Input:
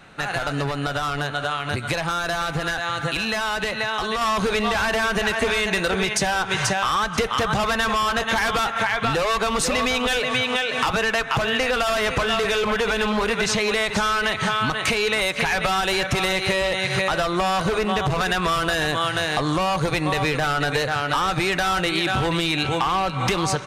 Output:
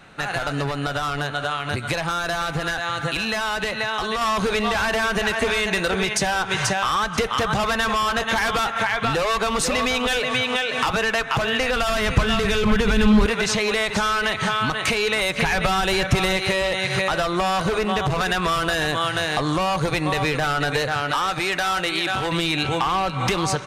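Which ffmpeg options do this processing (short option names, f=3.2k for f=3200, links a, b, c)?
-filter_complex "[0:a]asettb=1/sr,asplit=3[a][b][c];[a]atrim=end=11.504[d];[b]atrim=start=11.5:end=13.26,asetpts=PTS-STARTPTS,afade=t=in:d=0.004:c=qsin,afade=t=out:st=1.756:d=0.004:c=qsin,asubboost=boost=12:cutoff=240[e];[c]atrim=start=13.256[f];[d][e]acrossfade=d=0.004:c1=hsin:c2=qsin[g];[g][f]acrossfade=d=0.004:c1=qsin:c2=hsin,asettb=1/sr,asplit=3[h][i][j];[h]atrim=end=15.294[k];[i]atrim=start=15.29:end=16.37,asetpts=PTS-STARTPTS,afade=t=in:d=0.004:c=qsin,afade=t=out:st=1.076:d=0.004:c=qsin,lowshelf=f=230:g=7.5[l];[j]atrim=start=16.366[m];[k][l]acrossfade=d=0.004:c1=hsin:c2=qsin[n];[n][m]acrossfade=d=0.004:c1=qsin:c2=hsin,asettb=1/sr,asplit=3[o][p][q];[o]atrim=end=21.114[r];[p]atrim=start=21.11:end=22.32,asetpts=PTS-STARTPTS,afade=t=in:d=0.004:c=qsin,afade=t=out:st=1.206:d=0.004:c=qsin,lowshelf=f=280:g=-9[s];[q]atrim=start=22.316[t];[r][s]acrossfade=d=0.004:c1=hsin:c2=qsin[u];[u][t]acrossfade=d=0.004:c1=qsin:c2=hsin"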